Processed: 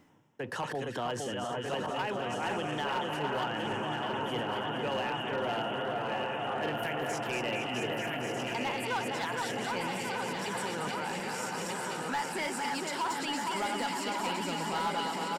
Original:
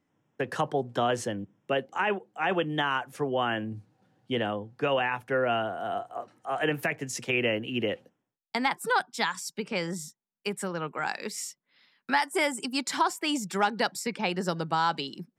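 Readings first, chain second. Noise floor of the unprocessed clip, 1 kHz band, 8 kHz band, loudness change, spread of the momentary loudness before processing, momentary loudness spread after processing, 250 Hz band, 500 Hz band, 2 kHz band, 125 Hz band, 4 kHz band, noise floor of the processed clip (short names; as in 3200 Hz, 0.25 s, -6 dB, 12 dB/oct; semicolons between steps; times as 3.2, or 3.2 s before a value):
-85 dBFS, -2.5 dB, -3.0 dB, -3.5 dB, 9 LU, 3 LU, -4.0 dB, -4.0 dB, -4.0 dB, -3.0 dB, -2.0 dB, -38 dBFS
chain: regenerating reverse delay 0.622 s, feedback 73%, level -5 dB; split-band echo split 1800 Hz, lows 0.46 s, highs 0.231 s, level -5 dB; reverse; upward compressor, threshold -28 dBFS; reverse; small resonant body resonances 910/2900 Hz, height 7 dB, ringing for 30 ms; hard clip -18.5 dBFS, distortion -17 dB; limiter -29 dBFS, peak gain reduction 10.5 dB; echo 1.139 s -7 dB; gain +1.5 dB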